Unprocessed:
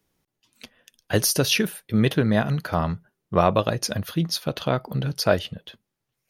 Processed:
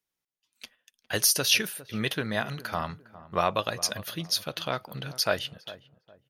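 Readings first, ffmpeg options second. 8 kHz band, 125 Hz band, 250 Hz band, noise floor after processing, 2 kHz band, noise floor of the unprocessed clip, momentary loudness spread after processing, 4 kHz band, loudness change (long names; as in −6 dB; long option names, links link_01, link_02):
+0.5 dB, −13.0 dB, −12.0 dB, below −85 dBFS, −1.5 dB, −81 dBFS, 13 LU, 0.0 dB, −4.5 dB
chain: -filter_complex "[0:a]agate=range=-11dB:threshold=-52dB:ratio=16:detection=peak,tiltshelf=frequency=720:gain=-7,asplit=2[link_01][link_02];[link_02]adelay=407,lowpass=frequency=970:poles=1,volume=-15.5dB,asplit=2[link_03][link_04];[link_04]adelay=407,lowpass=frequency=970:poles=1,volume=0.32,asplit=2[link_05][link_06];[link_06]adelay=407,lowpass=frequency=970:poles=1,volume=0.32[link_07];[link_03][link_05][link_07]amix=inputs=3:normalize=0[link_08];[link_01][link_08]amix=inputs=2:normalize=0,volume=-6.5dB"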